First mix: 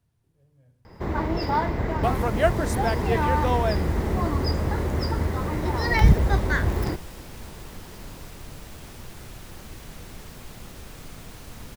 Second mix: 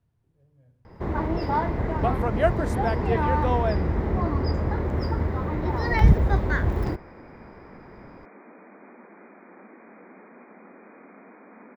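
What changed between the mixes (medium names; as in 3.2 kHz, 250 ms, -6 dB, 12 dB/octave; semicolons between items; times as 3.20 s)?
second sound: add brick-wall FIR band-pass 190–2500 Hz; master: add treble shelf 3.2 kHz -11.5 dB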